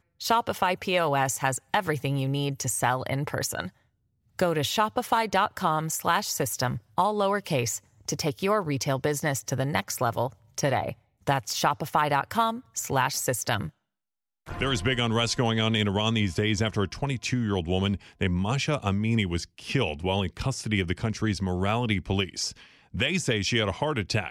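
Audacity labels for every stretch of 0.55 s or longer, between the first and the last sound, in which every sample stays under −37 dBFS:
3.680000	4.390000	silence
13.690000	14.470000	silence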